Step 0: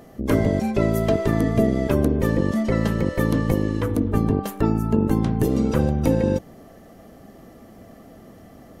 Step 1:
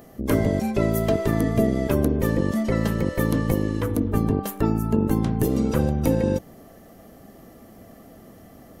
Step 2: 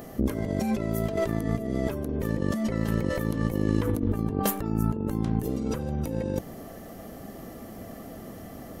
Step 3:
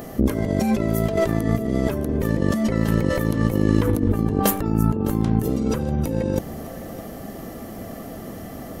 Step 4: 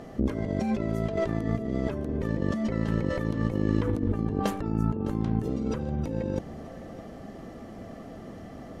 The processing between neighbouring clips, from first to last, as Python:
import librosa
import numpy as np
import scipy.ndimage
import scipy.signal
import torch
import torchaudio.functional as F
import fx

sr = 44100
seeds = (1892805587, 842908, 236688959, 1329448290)

y1 = fx.high_shelf(x, sr, hz=11000.0, db=11.0)
y1 = y1 * librosa.db_to_amplitude(-1.5)
y2 = fx.over_compress(y1, sr, threshold_db=-28.0, ratio=-1.0)
y3 = y2 + 10.0 ** (-16.5 / 20.0) * np.pad(y2, (int(608 * sr / 1000.0), 0))[:len(y2)]
y3 = y3 * librosa.db_to_amplitude(6.5)
y4 = fx.air_absorb(y3, sr, metres=91.0)
y4 = y4 * librosa.db_to_amplitude(-7.0)